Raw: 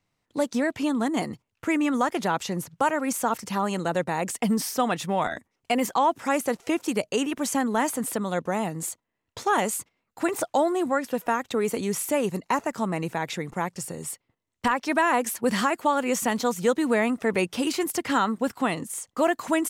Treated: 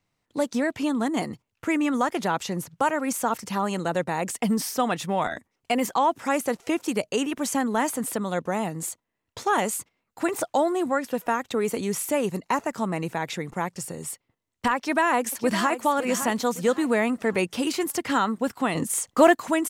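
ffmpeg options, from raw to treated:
-filter_complex "[0:a]asplit=2[a][b];[b]afade=t=in:st=14.76:d=0.01,afade=t=out:st=15.74:d=0.01,aecho=0:1:560|1120|1680|2240:0.298538|0.104488|0.0365709|0.0127998[c];[a][c]amix=inputs=2:normalize=0,asettb=1/sr,asplit=3[d][e][f];[d]atrim=end=18.754[g];[e]atrim=start=18.75:end=19.35,asetpts=PTS-STARTPTS,afade=t=in:d=0.004:c=qsin,afade=t=out:st=0.596:d=0.004:c=qsin,acontrast=87[h];[f]atrim=start=19.346[i];[g][h]acrossfade=d=0.004:c1=hsin:c2=qsin[j];[j][i]acrossfade=d=0.004:c1=qsin:c2=hsin"

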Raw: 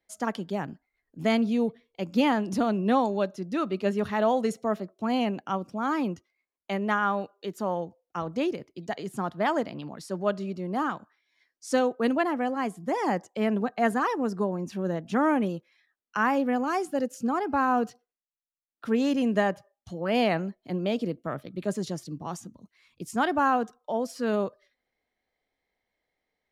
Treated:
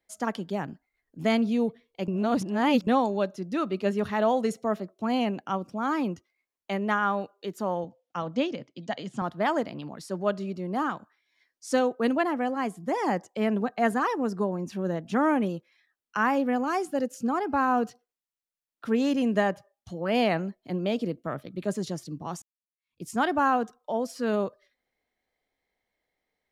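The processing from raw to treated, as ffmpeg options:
-filter_complex "[0:a]asettb=1/sr,asplit=3[a][b][c];[a]atrim=end=7.844[d];[b]atrim=start=7.84:end=9.22,asetpts=PTS-STARTPTS,afade=t=in:d=0.004:c=qsin,afade=t=out:st=1.376:d=0.004:c=qsin,highpass=130,equalizer=f=130:t=q:w=4:g=5,equalizer=f=250:t=q:w=4:g=5,equalizer=f=390:t=q:w=4:g=-9,equalizer=f=550:t=q:w=4:g=4,equalizer=f=3.2k:t=q:w=4:g=6,lowpass=f=7.3k:w=0.5412,lowpass=f=7.3k:w=1.3066[e];[c]atrim=start=9.216[f];[d][e]acrossfade=d=0.004:c1=hsin:c2=qsin[g];[g][f]acrossfade=d=0.004:c1=qsin:c2=hsin,asplit=4[h][i][j][k];[h]atrim=end=2.082[l];[i]atrim=start=2.078:end=2.872,asetpts=PTS-STARTPTS,areverse[m];[j]atrim=start=2.868:end=22.42,asetpts=PTS-STARTPTS,afade=t=out:st=19.548:d=0.004:c=hsin[n];[k]atrim=start=22.42,asetpts=PTS-STARTPTS,afade=t=in:d=0.61:c=exp[o];[l][m]acrossfade=d=0.004:c1=hsin:c2=hsin[p];[n][o]concat=n=2:v=0:a=1[q];[p][q]acrossfade=d=0.004:c1=hsin:c2=hsin"

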